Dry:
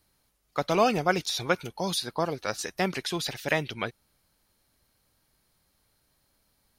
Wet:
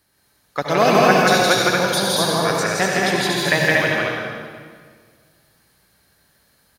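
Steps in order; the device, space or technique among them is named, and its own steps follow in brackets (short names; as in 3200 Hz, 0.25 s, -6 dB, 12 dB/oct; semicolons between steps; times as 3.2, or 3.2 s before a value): stadium PA (HPF 210 Hz 6 dB/oct; bell 1700 Hz +8 dB 0.26 oct; loudspeakers at several distances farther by 57 m -2 dB, 80 m -2 dB; reverb RT60 1.8 s, pre-delay 65 ms, DRR 0 dB); low shelf 120 Hz +8 dB; 0.77–2.6 high shelf 9200 Hz +5.5 dB; 3.2–3.61 notch 5500 Hz, Q 11; gain +4.5 dB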